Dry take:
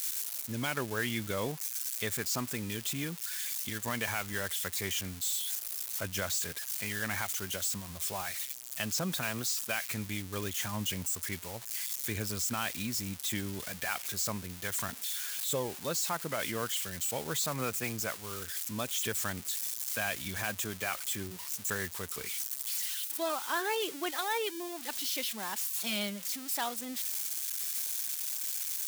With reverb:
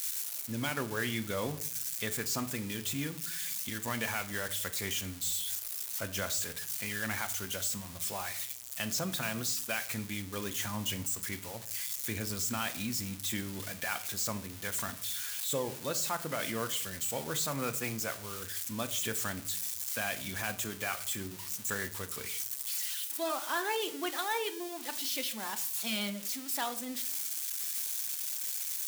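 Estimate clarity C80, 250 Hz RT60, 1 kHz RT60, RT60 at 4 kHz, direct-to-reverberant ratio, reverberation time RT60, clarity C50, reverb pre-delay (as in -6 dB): 19.0 dB, 0.85 s, 0.55 s, 0.35 s, 9.0 dB, 0.60 s, 15.5 dB, 3 ms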